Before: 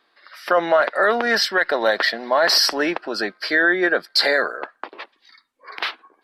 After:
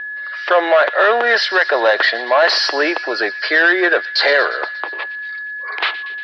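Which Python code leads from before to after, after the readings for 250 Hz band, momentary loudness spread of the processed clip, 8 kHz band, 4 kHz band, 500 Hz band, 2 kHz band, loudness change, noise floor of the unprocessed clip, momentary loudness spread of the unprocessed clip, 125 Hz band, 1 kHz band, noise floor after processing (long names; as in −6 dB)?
+0.5 dB, 12 LU, −7.0 dB, +1.5 dB, +4.5 dB, +6.0 dB, +4.0 dB, −65 dBFS, 12 LU, below −10 dB, +4.5 dB, −28 dBFS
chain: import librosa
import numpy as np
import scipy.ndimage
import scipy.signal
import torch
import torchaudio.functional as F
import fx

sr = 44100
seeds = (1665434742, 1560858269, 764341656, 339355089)

y = 10.0 ** (-13.5 / 20.0) * np.tanh(x / 10.0 ** (-13.5 / 20.0))
y = scipy.signal.sosfilt(scipy.signal.butter(4, 360.0, 'highpass', fs=sr, output='sos'), y)
y = fx.echo_wet_highpass(y, sr, ms=118, feedback_pct=67, hz=2300.0, wet_db=-14.0)
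y = y + 10.0 ** (-32.0 / 20.0) * np.sin(2.0 * np.pi * 1700.0 * np.arange(len(y)) / sr)
y = scipy.signal.sosfilt(scipy.signal.butter(4, 4200.0, 'lowpass', fs=sr, output='sos'), y)
y = y * 10.0 ** (7.5 / 20.0)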